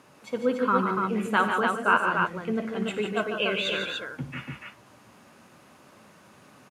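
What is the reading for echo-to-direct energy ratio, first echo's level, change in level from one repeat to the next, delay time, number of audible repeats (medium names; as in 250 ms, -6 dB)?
-1.0 dB, -14.0 dB, no regular repeats, 57 ms, 4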